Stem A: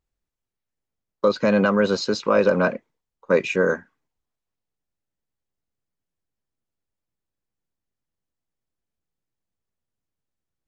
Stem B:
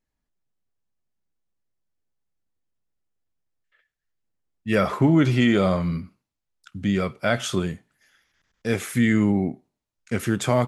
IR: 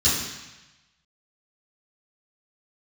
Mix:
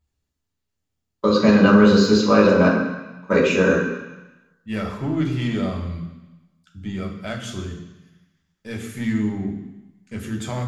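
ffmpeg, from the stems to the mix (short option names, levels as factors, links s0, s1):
-filter_complex "[0:a]deesser=0.7,volume=1,asplit=2[s0][s1];[s1]volume=0.251[s2];[1:a]aeval=exprs='0.447*(cos(1*acos(clip(val(0)/0.447,-1,1)))-cos(1*PI/2))+0.0316*(cos(4*acos(clip(val(0)/0.447,-1,1)))-cos(4*PI/2))+0.0355*(cos(6*acos(clip(val(0)/0.447,-1,1)))-cos(6*PI/2))':c=same,volume=0.335,asplit=2[s3][s4];[s4]volume=0.15[s5];[2:a]atrim=start_sample=2205[s6];[s2][s5]amix=inputs=2:normalize=0[s7];[s7][s6]afir=irnorm=-1:irlink=0[s8];[s0][s3][s8]amix=inputs=3:normalize=0"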